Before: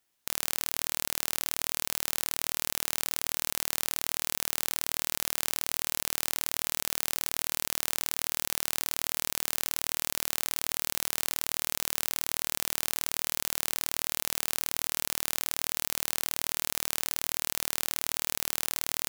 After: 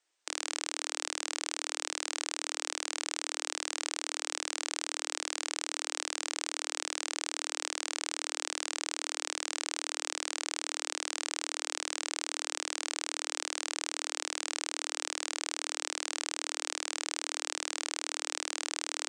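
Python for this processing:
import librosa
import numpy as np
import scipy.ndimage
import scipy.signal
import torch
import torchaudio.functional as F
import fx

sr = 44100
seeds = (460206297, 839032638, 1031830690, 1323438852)

y = scipy.signal.sosfilt(scipy.signal.cheby1(5, 1.0, [300.0, 8600.0], 'bandpass', fs=sr, output='sos'), x)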